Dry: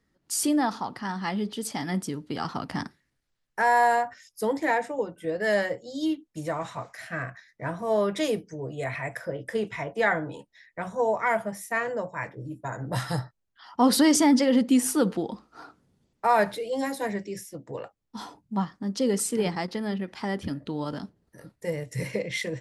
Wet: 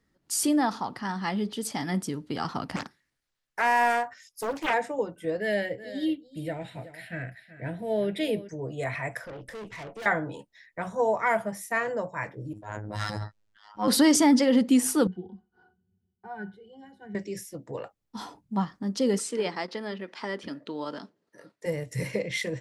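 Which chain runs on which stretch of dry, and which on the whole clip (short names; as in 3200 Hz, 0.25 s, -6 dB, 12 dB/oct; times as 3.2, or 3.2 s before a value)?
2.76–4.74 low shelf 470 Hz -8 dB + Doppler distortion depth 0.63 ms
5.4–8.49 fixed phaser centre 2700 Hz, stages 4 + echo 0.377 s -15 dB
9.24–10.06 tube stage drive 37 dB, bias 0.45 + Doppler distortion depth 0.14 ms
12.53–13.88 LPF 6500 Hz + robotiser 105 Hz + transient shaper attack -9 dB, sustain +9 dB
15.07–17.15 bell 650 Hz -7 dB 1.3 oct + octave resonator F#, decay 0.11 s
19.19–21.66 BPF 330–6700 Hz + notch 780 Hz, Q 9.8
whole clip: dry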